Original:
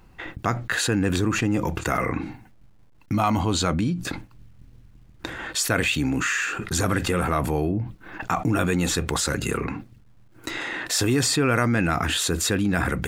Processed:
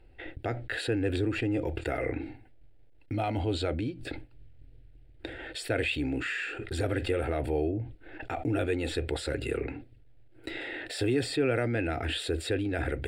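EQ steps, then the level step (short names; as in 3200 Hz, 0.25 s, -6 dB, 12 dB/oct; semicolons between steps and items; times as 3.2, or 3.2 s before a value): running mean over 7 samples; fixed phaser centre 450 Hz, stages 4; -2.0 dB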